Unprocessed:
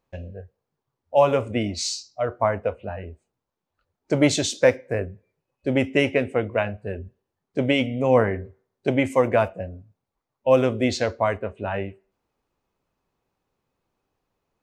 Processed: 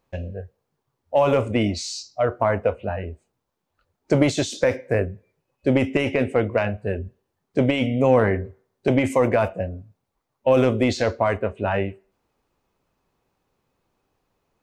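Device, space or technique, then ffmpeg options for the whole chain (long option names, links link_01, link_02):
de-esser from a sidechain: -filter_complex "[0:a]asplit=2[link_01][link_02];[link_02]highpass=frequency=6200:poles=1,apad=whole_len=645030[link_03];[link_01][link_03]sidechaincompress=threshold=-38dB:ratio=8:attack=4.3:release=21,volume=5dB"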